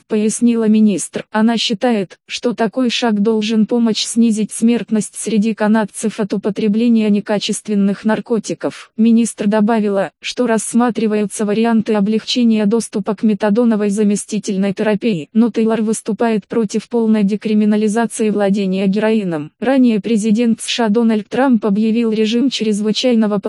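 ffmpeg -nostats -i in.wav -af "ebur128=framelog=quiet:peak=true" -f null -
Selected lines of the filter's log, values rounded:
Integrated loudness:
  I:         -15.4 LUFS
  Threshold: -25.4 LUFS
Loudness range:
  LRA:         1.4 LU
  Threshold: -35.5 LUFS
  LRA low:   -16.1 LUFS
  LRA high:  -14.7 LUFS
True peak:
  Peak:       -1.9 dBFS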